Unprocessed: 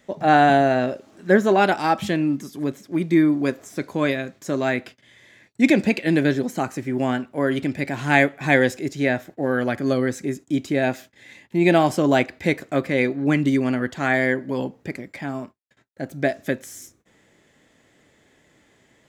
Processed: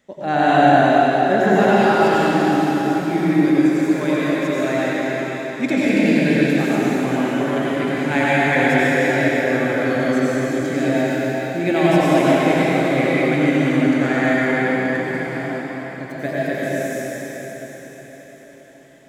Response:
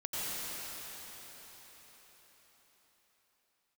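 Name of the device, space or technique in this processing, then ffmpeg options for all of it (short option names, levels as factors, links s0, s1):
cathedral: -filter_complex "[1:a]atrim=start_sample=2205[s0];[0:a][s0]afir=irnorm=-1:irlink=0,volume=0.794"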